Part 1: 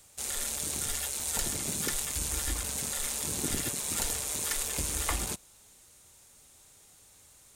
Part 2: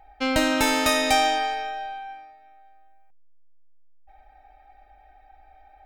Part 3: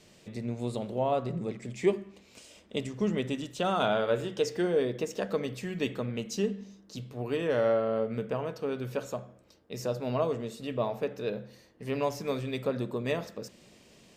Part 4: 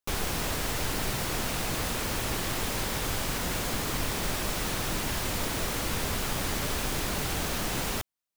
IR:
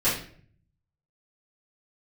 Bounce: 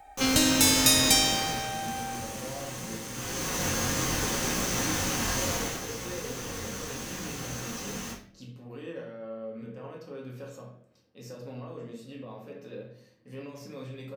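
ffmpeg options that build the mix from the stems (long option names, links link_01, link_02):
-filter_complex "[0:a]volume=-15.5dB[link_01];[1:a]bass=frequency=250:gain=2,treble=frequency=4000:gain=6,acrossover=split=290|3000[link_02][link_03][link_04];[link_03]acompressor=threshold=-36dB:ratio=6[link_05];[link_02][link_05][link_04]amix=inputs=3:normalize=0,volume=2.5dB[link_06];[2:a]alimiter=level_in=3dB:limit=-24dB:level=0:latency=1,volume=-3dB,adelay=1450,volume=-12.5dB,asplit=2[link_07][link_08];[link_08]volume=-8.5dB[link_09];[3:a]equalizer=frequency=6300:width=5.4:gain=12.5,flanger=delay=16.5:depth=6.2:speed=0.67,adelay=100,volume=6.5dB,afade=type=out:start_time=1.14:duration=0.55:silence=0.316228,afade=type=in:start_time=3.11:duration=0.51:silence=0.281838,afade=type=out:start_time=5.48:duration=0.33:silence=0.354813,asplit=2[link_10][link_11];[link_11]volume=-6.5dB[link_12];[4:a]atrim=start_sample=2205[link_13];[link_09][link_12]amix=inputs=2:normalize=0[link_14];[link_14][link_13]afir=irnorm=-1:irlink=0[link_15];[link_01][link_06][link_07][link_10][link_15]amix=inputs=5:normalize=0,highpass=frequency=110:poles=1"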